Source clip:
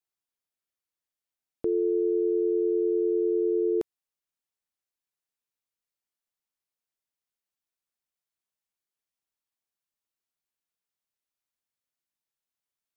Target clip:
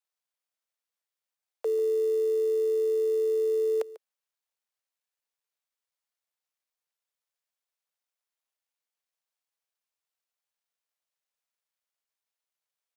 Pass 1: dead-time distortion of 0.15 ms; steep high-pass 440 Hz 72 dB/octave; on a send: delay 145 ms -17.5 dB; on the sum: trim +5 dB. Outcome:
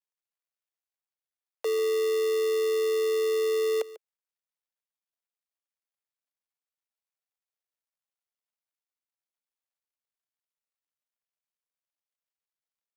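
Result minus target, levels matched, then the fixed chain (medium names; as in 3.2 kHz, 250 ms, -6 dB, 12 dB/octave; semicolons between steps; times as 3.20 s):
dead-time distortion: distortion +16 dB
dead-time distortion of 0.045 ms; steep high-pass 440 Hz 72 dB/octave; on a send: delay 145 ms -17.5 dB; on the sum: trim +5 dB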